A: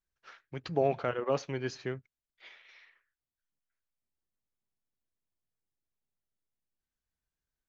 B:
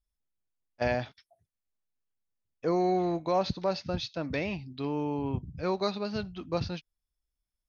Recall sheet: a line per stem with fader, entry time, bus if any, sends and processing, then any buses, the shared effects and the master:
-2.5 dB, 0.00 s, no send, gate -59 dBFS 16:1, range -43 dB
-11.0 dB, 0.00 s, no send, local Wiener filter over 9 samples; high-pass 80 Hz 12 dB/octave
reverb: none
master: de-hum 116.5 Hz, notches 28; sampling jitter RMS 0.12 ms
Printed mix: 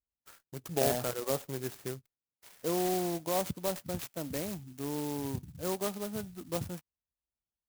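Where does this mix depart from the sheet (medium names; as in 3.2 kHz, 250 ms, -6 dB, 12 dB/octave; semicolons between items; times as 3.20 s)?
stem B -11.0 dB -> -4.0 dB; master: missing de-hum 116.5 Hz, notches 28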